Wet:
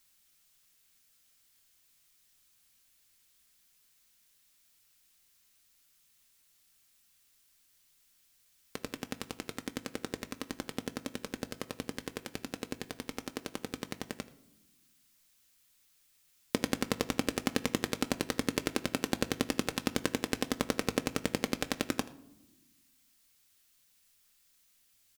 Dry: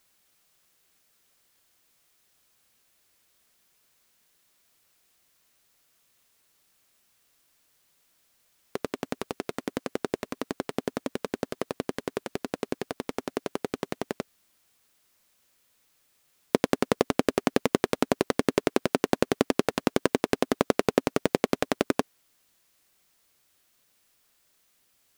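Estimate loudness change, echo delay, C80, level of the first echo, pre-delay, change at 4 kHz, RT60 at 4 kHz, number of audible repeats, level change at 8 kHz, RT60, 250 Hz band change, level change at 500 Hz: −6.5 dB, 81 ms, 17.5 dB, −20.5 dB, 4 ms, −1.0 dB, 0.50 s, 1, 0.0 dB, 0.95 s, −6.5 dB, −11.0 dB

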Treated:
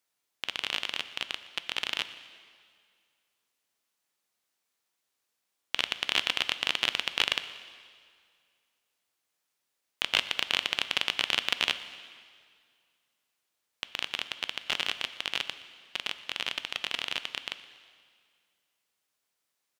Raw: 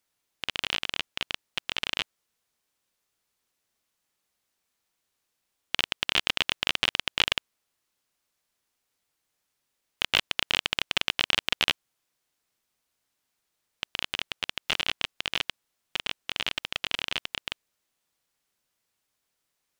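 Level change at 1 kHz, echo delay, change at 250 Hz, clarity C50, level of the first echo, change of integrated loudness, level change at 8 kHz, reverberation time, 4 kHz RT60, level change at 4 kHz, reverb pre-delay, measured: −2.0 dB, 120 ms, −4.5 dB, 12.5 dB, −21.0 dB, −2.0 dB, −1.5 dB, 2.1 s, 1.9 s, −1.5 dB, 4 ms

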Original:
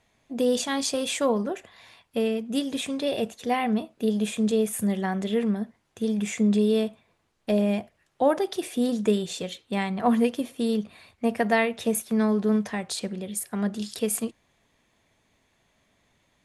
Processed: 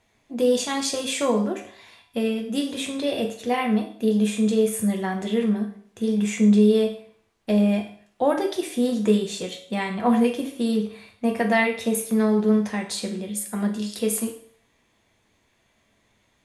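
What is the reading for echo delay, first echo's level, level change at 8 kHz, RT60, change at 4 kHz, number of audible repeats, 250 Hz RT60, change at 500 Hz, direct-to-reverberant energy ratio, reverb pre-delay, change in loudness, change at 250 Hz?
no echo audible, no echo audible, +2.0 dB, 0.55 s, +2.0 dB, no echo audible, 0.50 s, +2.5 dB, 2.0 dB, 7 ms, +3.0 dB, +3.5 dB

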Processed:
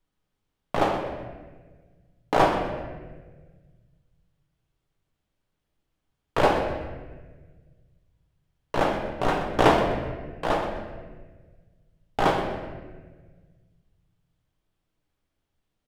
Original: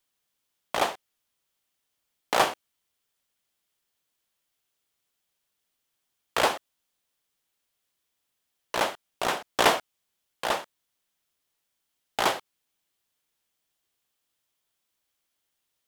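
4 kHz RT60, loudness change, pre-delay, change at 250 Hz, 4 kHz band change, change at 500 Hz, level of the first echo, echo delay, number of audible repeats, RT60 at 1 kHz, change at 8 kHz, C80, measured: 0.95 s, +2.0 dB, 6 ms, +11.0 dB, −5.0 dB, +6.0 dB, −12.5 dB, 125 ms, 1, 1.2 s, −10.0 dB, 6.0 dB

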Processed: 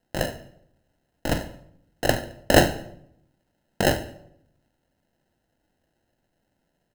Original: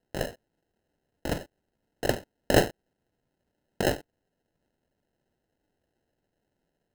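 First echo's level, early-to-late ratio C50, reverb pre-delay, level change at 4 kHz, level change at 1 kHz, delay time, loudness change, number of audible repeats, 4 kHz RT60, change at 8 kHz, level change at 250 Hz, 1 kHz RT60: −17.5 dB, 12.5 dB, 13 ms, +6.5 dB, +6.5 dB, 72 ms, +5.5 dB, 3, 0.50 s, +6.5 dB, +5.5 dB, 0.65 s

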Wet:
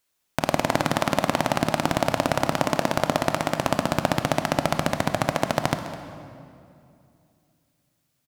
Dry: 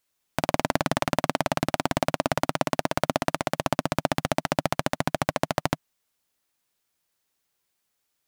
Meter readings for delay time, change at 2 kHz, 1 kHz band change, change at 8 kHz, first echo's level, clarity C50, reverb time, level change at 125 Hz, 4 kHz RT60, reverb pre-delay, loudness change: 207 ms, +2.5 dB, +3.0 dB, +2.5 dB, −16.0 dB, 8.0 dB, 2.6 s, +3.0 dB, 1.8 s, 20 ms, +3.0 dB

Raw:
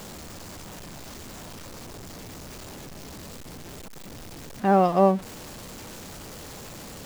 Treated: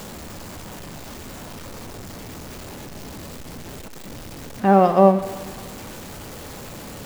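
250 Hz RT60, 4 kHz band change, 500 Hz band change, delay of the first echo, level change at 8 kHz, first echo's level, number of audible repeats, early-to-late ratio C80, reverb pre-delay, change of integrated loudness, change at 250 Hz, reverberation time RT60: 1.4 s, +2.5 dB, +5.5 dB, no echo audible, +2.0 dB, no echo audible, no echo audible, 13.0 dB, 3 ms, +4.0 dB, +5.0 dB, 1.5 s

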